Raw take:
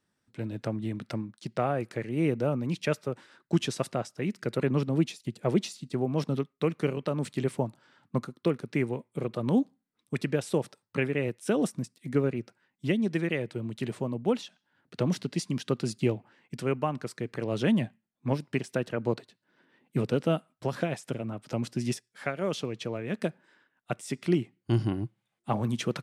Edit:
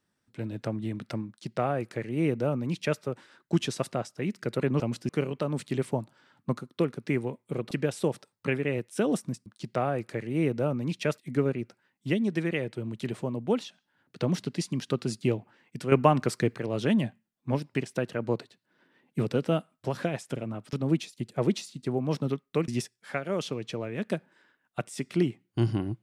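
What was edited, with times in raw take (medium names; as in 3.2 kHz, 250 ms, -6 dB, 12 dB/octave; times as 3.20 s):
1.28–3.00 s: copy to 11.96 s
4.80–6.75 s: swap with 21.51–21.80 s
9.37–10.21 s: delete
16.70–17.33 s: gain +8.5 dB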